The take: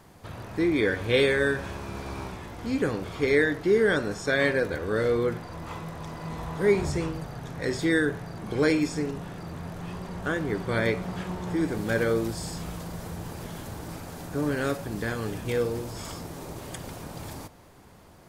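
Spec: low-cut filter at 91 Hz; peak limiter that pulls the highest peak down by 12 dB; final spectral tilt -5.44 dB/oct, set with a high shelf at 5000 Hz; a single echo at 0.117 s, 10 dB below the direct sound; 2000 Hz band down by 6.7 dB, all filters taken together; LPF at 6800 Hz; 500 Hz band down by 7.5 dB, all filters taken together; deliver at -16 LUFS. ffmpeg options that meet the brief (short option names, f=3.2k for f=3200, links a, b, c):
-af "highpass=91,lowpass=6.8k,equalizer=f=500:t=o:g=-9,equalizer=f=2k:t=o:g=-8.5,highshelf=f=5k:g=4,alimiter=level_in=3dB:limit=-24dB:level=0:latency=1,volume=-3dB,aecho=1:1:117:0.316,volume=21dB"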